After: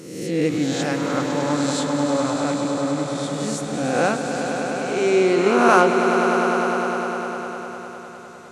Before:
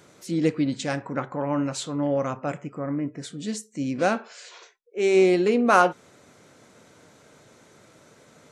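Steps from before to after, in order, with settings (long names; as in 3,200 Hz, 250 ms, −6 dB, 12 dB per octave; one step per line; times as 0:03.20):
peak hold with a rise ahead of every peak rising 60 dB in 1.05 s
echo that builds up and dies away 101 ms, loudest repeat 5, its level −10 dB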